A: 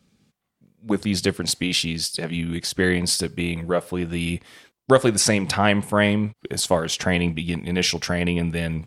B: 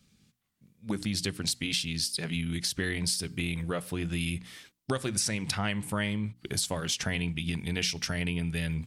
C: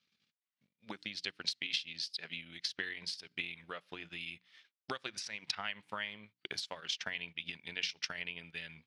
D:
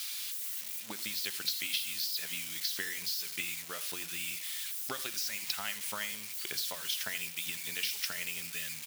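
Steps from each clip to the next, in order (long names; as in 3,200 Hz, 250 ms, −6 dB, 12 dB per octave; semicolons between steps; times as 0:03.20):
parametric band 590 Hz −11 dB 2.7 octaves; mains-hum notches 60/120/180/240/300 Hz; downward compressor 4 to 1, threshold −30 dBFS, peak gain reduction 11 dB; level +2 dB
transient designer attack +9 dB, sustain −10 dB; resonant band-pass 6,900 Hz, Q 0.51; high-frequency loss of the air 270 metres; level +1.5 dB
spike at every zero crossing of −29.5 dBFS; single-tap delay 82 ms −17 dB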